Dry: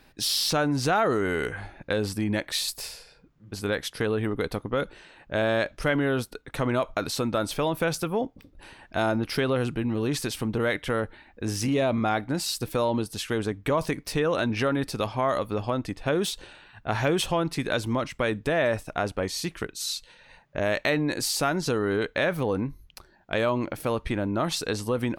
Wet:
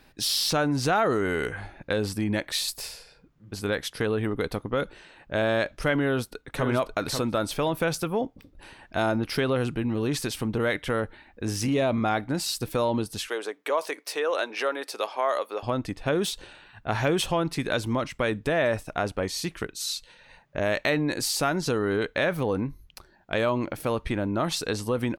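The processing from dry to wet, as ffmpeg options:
-filter_complex "[0:a]asplit=2[a][b];[b]afade=t=in:st=6.04:d=0.01,afade=t=out:st=6.65:d=0.01,aecho=0:1:540|1080|1620:0.473151|0.0709727|0.0106459[c];[a][c]amix=inputs=2:normalize=0,asettb=1/sr,asplit=3[d][e][f];[d]atrim=end=13.284[g];[e]atrim=start=13.28:end=15.63,asetpts=PTS-STARTPTS,afade=t=in:d=0.004:c=qsin,afade=t=out:st=2.346:d=0.004:c=qsin,highpass=f=410:w=0.5412,highpass=f=410:w=1.3066[h];[f]atrim=start=15.626[i];[g][h]acrossfade=d=0.004:c1=hsin:c2=qsin[j];[j][i]acrossfade=d=0.004:c1=qsin:c2=hsin"

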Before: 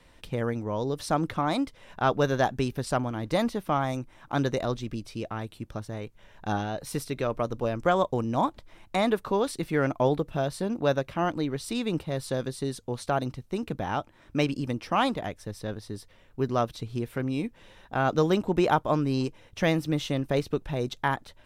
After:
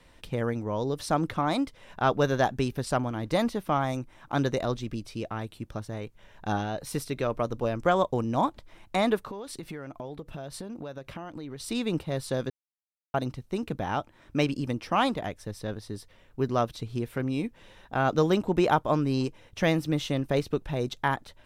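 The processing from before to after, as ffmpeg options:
-filter_complex "[0:a]asettb=1/sr,asplit=3[a][b][c];[a]atrim=end=9.174[d];[b]atrim=start=9.17:end=11.6,asetpts=PTS-STARTPTS,afade=t=in:d=0.004:c=qsin,afade=t=out:st=2.426:d=0.004:c=qsin,acompressor=threshold=-34dB:ratio=12:attack=3.2:release=140:knee=1:detection=peak[e];[c]atrim=start=11.596[f];[d][e]acrossfade=d=0.004:c1=hsin:c2=qsin[g];[g][f]acrossfade=d=0.004:c1=qsin:c2=hsin,asplit=3[h][i][j];[h]atrim=end=12.5,asetpts=PTS-STARTPTS,afade=t=out:st=12.496:d=0.004:c=hsin[k];[i]atrim=start=12.5:end=13.14,asetpts=PTS-STARTPTS,volume=0[l];[j]atrim=start=13.14,asetpts=PTS-STARTPTS,afade=t=in:d=0.004:c=hsin[m];[k][l][m]concat=n=3:v=0:a=1"

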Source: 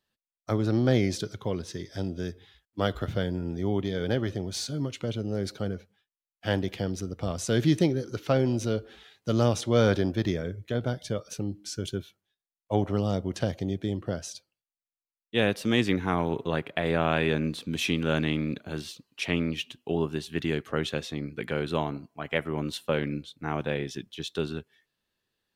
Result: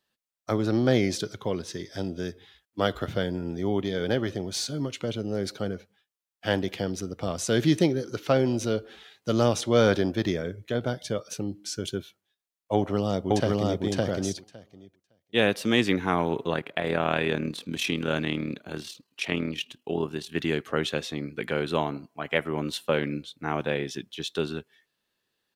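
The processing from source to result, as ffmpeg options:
-filter_complex "[0:a]asplit=2[a][b];[b]afade=t=in:st=12.74:d=0.01,afade=t=out:st=13.83:d=0.01,aecho=0:1:560|1120|1680:1|0.1|0.01[c];[a][c]amix=inputs=2:normalize=0,asplit=3[d][e][f];[d]afade=t=out:st=16.52:d=0.02[g];[e]tremolo=f=38:d=0.571,afade=t=in:st=16.52:d=0.02,afade=t=out:st=20.34:d=0.02[h];[f]afade=t=in:st=20.34:d=0.02[i];[g][h][i]amix=inputs=3:normalize=0,lowshelf=f=110:g=-11.5,volume=3dB"

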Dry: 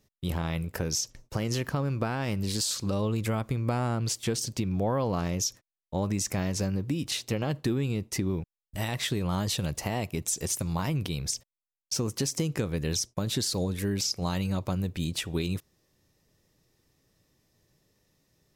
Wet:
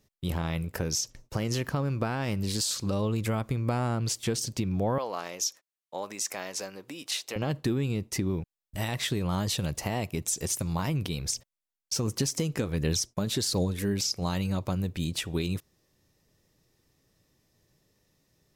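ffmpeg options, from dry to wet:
-filter_complex "[0:a]asettb=1/sr,asplit=3[a][b][c];[a]atrim=end=4.984[d];[b]atrim=start=4.98:end=7.36,asetpts=PTS-STARTPTS,afade=t=in:d=0.004:c=qsin,afade=t=out:st=2.376:d=0.004:c=qsin,highpass=550[e];[c]atrim=start=7.356[f];[d][e]acrossfade=d=0.004:c1=hsin:c2=qsin[g];[g][f]acrossfade=d=0.004:c1=qsin:c2=hsin,asplit=3[h][i][j];[h]afade=t=out:st=11.1:d=0.02[k];[i]aphaser=in_gain=1:out_gain=1:delay=4.9:decay=0.29:speed=1.4:type=sinusoidal,afade=t=in:st=11.1:d=0.02,afade=t=out:st=13.92:d=0.02[l];[j]afade=t=in:st=13.92:d=0.02[m];[k][l][m]amix=inputs=3:normalize=0"

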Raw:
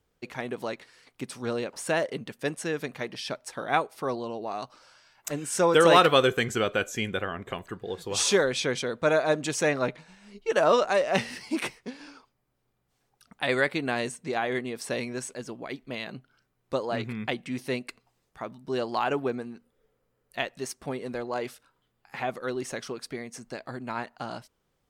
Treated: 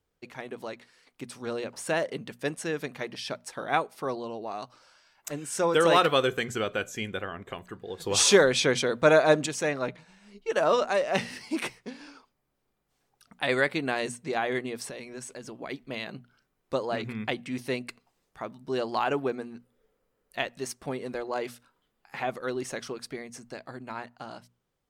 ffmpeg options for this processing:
-filter_complex "[0:a]asettb=1/sr,asplit=3[a][b][c];[a]atrim=end=14.894[d];[b]atrim=start=14.89:end=15.62,asetpts=PTS-STARTPTS,afade=t=in:d=0.004:c=qsin,afade=t=out:st=0.726:d=0.004:c=qsin,acompressor=threshold=-36dB:ratio=6:attack=3.2:release=140:knee=1:detection=peak[e];[c]atrim=start=15.616[f];[d][e]acrossfade=d=0.004:c1=hsin:c2=qsin[g];[g][f]acrossfade=d=0.004:c1=qsin:c2=hsin,asplit=3[h][i][j];[h]atrim=end=8.002[k];[i]atrim=start=7.998:end=9.462,asetpts=PTS-STARTPTS,volume=7.5dB[l];[j]atrim=start=9.458[m];[k][l]acrossfade=d=0.004:c1=hsin:c2=hsin[n];[n][m]acrossfade=d=0.004:c1=hsin:c2=hsin,bandreject=f=60:t=h:w=6,bandreject=f=120:t=h:w=6,bandreject=f=180:t=h:w=6,bandreject=f=240:t=h:w=6,dynaudnorm=f=150:g=21:m=5dB,volume=-5dB"

